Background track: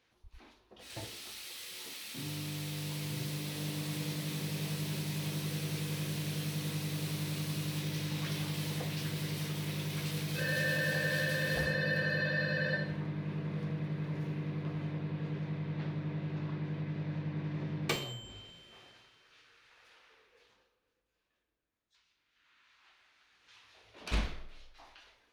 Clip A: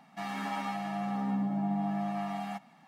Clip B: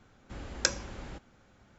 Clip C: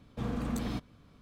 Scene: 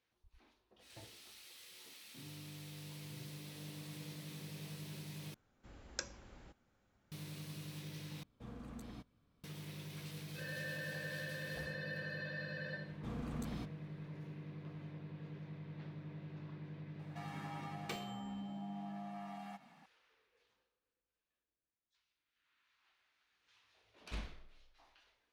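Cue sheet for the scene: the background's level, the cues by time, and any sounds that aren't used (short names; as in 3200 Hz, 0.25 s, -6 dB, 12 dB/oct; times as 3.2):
background track -11.5 dB
5.34 replace with B -14.5 dB
8.23 replace with C -16 dB
12.86 add C -9.5 dB
16.99 add A -4.5 dB + compressor 2:1, threshold -46 dBFS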